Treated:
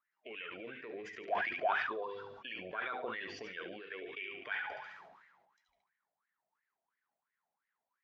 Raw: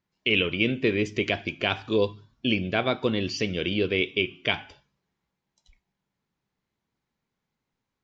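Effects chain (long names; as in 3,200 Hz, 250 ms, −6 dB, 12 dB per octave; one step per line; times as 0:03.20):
spectral magnitudes quantised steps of 15 dB
mains-hum notches 50/100/150/200/250/300/350/400/450/500 Hz
dynamic equaliser 440 Hz, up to +6 dB, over −40 dBFS, Q 2.1
brickwall limiter −17.5 dBFS, peak gain reduction 8 dB
downward compressor, threshold −29 dBFS, peak gain reduction 8 dB
LFO wah 2.9 Hz 650–1,900 Hz, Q 12
on a send: delay with a high-pass on its return 71 ms, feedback 33%, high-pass 2,100 Hz, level −6.5 dB
on the sum: level that may fall only so fast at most 40 dB per second
level +11.5 dB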